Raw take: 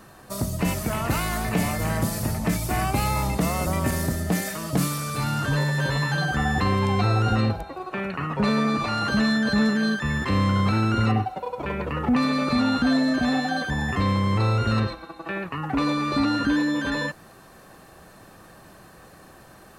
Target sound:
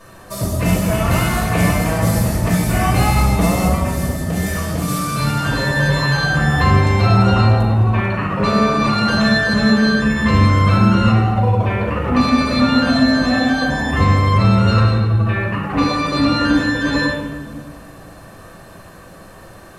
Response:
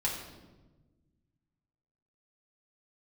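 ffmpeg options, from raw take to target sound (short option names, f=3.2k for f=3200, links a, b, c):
-filter_complex "[0:a]asettb=1/sr,asplit=3[a][b][c];[a]atrim=end=3.664[d];[b]atrim=start=3.66:end=4.88,asetpts=PTS-STARTPTS,afade=t=in:d=0.004:c=qsin,afade=t=out:st=1.216:d=0.004:c=qsin,acompressor=threshold=-27dB:ratio=3[e];[c]atrim=start=4.876[f];[d][e]acrossfade=d=0.004:c1=hsin:c2=qsin[g];[g][f]acrossfade=d=0.004:c1=qsin:c2=hsin,asettb=1/sr,asplit=3[h][i][j];[h]atrim=end=7.144[k];[i]atrim=start=7.14:end=8.14,asetpts=PTS-STARTPTS,afade=t=in:d=0.004:c=qsin,afade=t=out:st=0.996:d=0.004:c=qsin,equalizer=f=940:t=o:w=0.25:g=9.5[l];[j]atrim=start=8.136[m];[k][l]acrossfade=d=0.004:c1=hsin:c2=qsin[n];[n][m]acrossfade=d=0.004:c1=qsin:c2=hsin[o];[1:a]atrim=start_sample=2205,asetrate=28665,aresample=44100[p];[o][p]afir=irnorm=-1:irlink=0,volume=-1dB"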